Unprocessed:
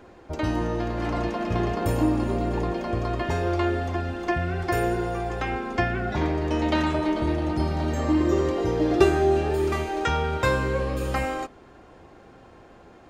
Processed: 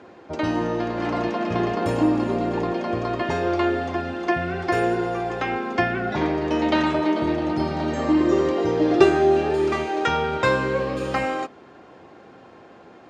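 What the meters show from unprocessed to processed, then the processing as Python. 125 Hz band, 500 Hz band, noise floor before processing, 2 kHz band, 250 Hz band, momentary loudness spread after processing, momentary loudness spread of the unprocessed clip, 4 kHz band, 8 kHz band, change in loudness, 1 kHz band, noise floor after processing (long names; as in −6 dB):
−3.5 dB, +3.5 dB, −50 dBFS, +3.5 dB, +3.0 dB, 7 LU, 6 LU, +3.0 dB, can't be measured, +2.5 dB, +3.5 dB, −47 dBFS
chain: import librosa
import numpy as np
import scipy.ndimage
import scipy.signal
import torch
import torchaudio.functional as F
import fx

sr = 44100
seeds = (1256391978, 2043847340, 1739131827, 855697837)

y = fx.bandpass_edges(x, sr, low_hz=150.0, high_hz=5900.0)
y = y * 10.0 ** (3.5 / 20.0)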